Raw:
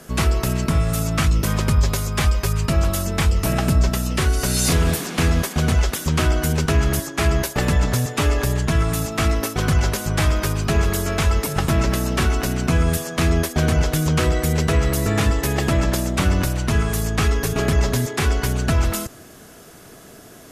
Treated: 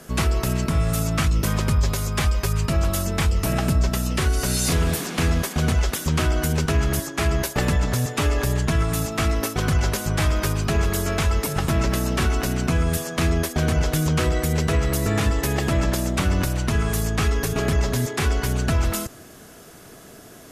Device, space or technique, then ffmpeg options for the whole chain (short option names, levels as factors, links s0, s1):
clipper into limiter: -af "asoftclip=type=hard:threshold=0.376,alimiter=limit=0.282:level=0:latency=1:release=97,volume=0.891"